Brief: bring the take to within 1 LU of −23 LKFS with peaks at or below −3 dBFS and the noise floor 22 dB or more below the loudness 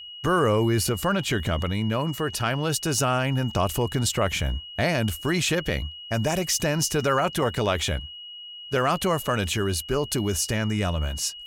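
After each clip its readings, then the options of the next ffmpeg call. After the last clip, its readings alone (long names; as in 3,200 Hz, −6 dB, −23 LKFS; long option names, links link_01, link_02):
interfering tone 2,900 Hz; level of the tone −38 dBFS; integrated loudness −25.0 LKFS; sample peak −10.5 dBFS; target loudness −23.0 LKFS
→ -af "bandreject=frequency=2900:width=30"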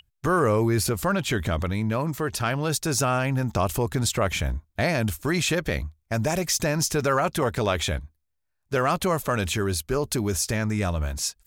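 interfering tone none found; integrated loudness −25.0 LKFS; sample peak −10.5 dBFS; target loudness −23.0 LKFS
→ -af "volume=2dB"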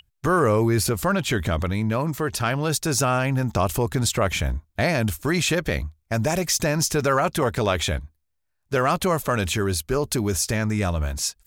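integrated loudness −23.0 LKFS; sample peak −8.5 dBFS; background noise floor −73 dBFS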